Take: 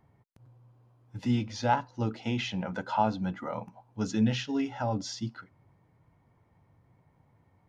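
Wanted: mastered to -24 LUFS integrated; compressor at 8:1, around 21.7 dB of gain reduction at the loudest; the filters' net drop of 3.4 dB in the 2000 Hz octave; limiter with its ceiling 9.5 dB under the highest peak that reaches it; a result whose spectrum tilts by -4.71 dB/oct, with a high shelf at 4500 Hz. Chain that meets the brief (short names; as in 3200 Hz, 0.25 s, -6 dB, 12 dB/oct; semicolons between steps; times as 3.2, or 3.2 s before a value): bell 2000 Hz -6.5 dB; high shelf 4500 Hz +7 dB; compressor 8:1, threshold -44 dBFS; gain +28 dB; limiter -13.5 dBFS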